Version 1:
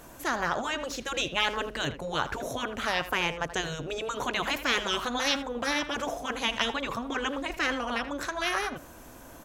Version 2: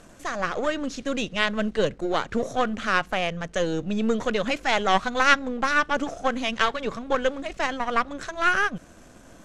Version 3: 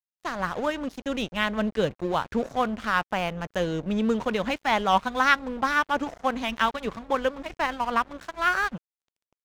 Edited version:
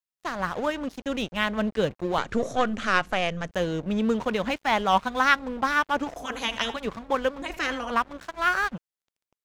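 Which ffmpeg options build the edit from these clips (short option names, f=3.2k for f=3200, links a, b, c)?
-filter_complex "[0:a]asplit=2[a][b];[2:a]asplit=4[c][d][e][f];[c]atrim=end=2.182[g];[1:a]atrim=start=2.178:end=3.512[h];[d]atrim=start=3.508:end=6.162[i];[a]atrim=start=6.158:end=6.762[j];[e]atrim=start=6.758:end=7.422[k];[b]atrim=start=7.418:end=7.912[l];[f]atrim=start=7.908[m];[g][h]acrossfade=d=0.004:c1=hsin:c2=hsin[n];[n][i]acrossfade=d=0.004:c1=hsin:c2=hsin[o];[o][j]acrossfade=d=0.004:c1=hsin:c2=hsin[p];[p][k]acrossfade=d=0.004:c1=hsin:c2=hsin[q];[q][l]acrossfade=d=0.004:c1=hsin:c2=hsin[r];[r][m]acrossfade=d=0.004:c1=hsin:c2=hsin"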